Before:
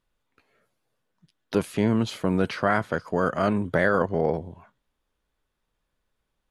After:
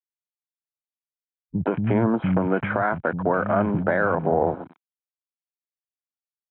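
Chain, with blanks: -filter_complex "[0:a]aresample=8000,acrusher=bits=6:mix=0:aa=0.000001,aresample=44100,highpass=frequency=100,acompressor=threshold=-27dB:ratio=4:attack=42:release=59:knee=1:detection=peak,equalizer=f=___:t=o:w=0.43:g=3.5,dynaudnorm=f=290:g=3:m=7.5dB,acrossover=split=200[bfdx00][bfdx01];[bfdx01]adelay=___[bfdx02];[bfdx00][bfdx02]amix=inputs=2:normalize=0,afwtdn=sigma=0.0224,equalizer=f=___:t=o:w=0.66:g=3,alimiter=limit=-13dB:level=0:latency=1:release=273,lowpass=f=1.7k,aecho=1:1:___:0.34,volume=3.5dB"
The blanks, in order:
330, 130, 1.1k, 1.3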